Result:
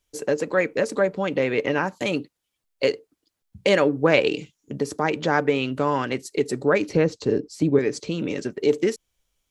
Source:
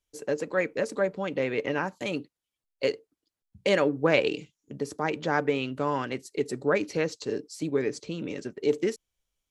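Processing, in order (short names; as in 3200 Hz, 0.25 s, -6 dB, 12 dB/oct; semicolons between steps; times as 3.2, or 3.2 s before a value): 6.89–7.79 tilt -2.5 dB/oct; in parallel at -1.5 dB: compressor, threshold -32 dBFS, peak gain reduction 14.5 dB; on the sum: gain +3 dB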